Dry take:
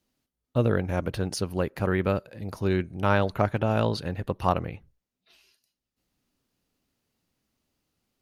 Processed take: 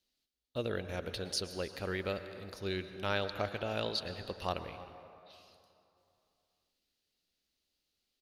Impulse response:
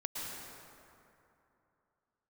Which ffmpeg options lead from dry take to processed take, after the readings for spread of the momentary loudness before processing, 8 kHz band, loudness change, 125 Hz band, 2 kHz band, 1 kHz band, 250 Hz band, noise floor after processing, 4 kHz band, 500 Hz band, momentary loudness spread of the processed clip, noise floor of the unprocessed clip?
7 LU, -4.0 dB, -10.5 dB, -15.5 dB, -7.0 dB, -11.5 dB, -14.0 dB, -84 dBFS, +1.0 dB, -10.0 dB, 12 LU, under -85 dBFS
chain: -filter_complex "[0:a]equalizer=f=125:t=o:w=1:g=-10,equalizer=f=250:t=o:w=1:g=-5,equalizer=f=1k:t=o:w=1:g=-7,equalizer=f=4k:t=o:w=1:g=10,asplit=2[a][b];[b]adelay=314.9,volume=-19dB,highshelf=f=4k:g=-7.08[c];[a][c]amix=inputs=2:normalize=0,asplit=2[d][e];[1:a]atrim=start_sample=2205,lowshelf=f=190:g=-7.5[f];[e][f]afir=irnorm=-1:irlink=0,volume=-9dB[g];[d][g]amix=inputs=2:normalize=0,volume=-9dB"

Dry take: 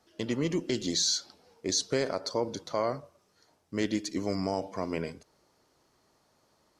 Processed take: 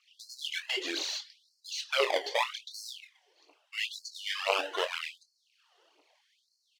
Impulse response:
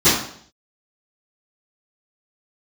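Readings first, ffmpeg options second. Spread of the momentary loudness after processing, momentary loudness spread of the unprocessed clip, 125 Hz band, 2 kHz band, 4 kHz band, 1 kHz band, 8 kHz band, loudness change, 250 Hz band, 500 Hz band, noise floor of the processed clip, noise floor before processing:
14 LU, 8 LU, under -40 dB, +8.0 dB, +1.0 dB, +2.0 dB, -9.0 dB, -1.5 dB, -17.0 dB, -3.5 dB, -76 dBFS, -70 dBFS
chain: -filter_complex "[0:a]acrossover=split=2400[a][b];[a]acrusher=samples=26:mix=1:aa=0.000001:lfo=1:lforange=15.6:lforate=1[c];[b]asoftclip=type=tanh:threshold=-34dB[d];[c][d]amix=inputs=2:normalize=0,equalizer=f=2.9k:t=o:w=0.72:g=11.5,aphaser=in_gain=1:out_gain=1:delay=2.9:decay=0.64:speed=2:type=triangular,aemphasis=mode=reproduction:type=50fm,asplit=2[e][f];[f]adelay=24,volume=-9.5dB[g];[e][g]amix=inputs=2:normalize=0,afftfilt=real='re*gte(b*sr/1024,260*pow(4200/260,0.5+0.5*sin(2*PI*0.8*pts/sr)))':imag='im*gte(b*sr/1024,260*pow(4200/260,0.5+0.5*sin(2*PI*0.8*pts/sr)))':win_size=1024:overlap=0.75"

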